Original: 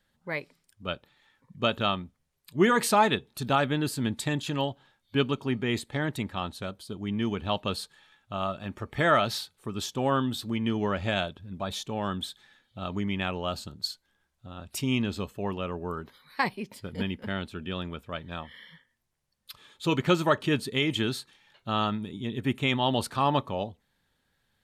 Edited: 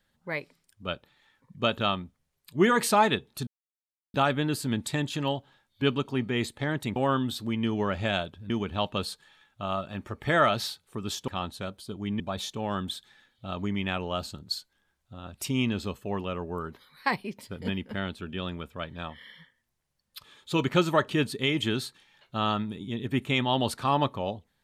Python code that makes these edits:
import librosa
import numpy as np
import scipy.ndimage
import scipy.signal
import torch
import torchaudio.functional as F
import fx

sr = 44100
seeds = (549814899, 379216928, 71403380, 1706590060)

y = fx.edit(x, sr, fx.insert_silence(at_s=3.47, length_s=0.67),
    fx.swap(start_s=6.29, length_s=0.92, other_s=9.99, other_length_s=1.54), tone=tone)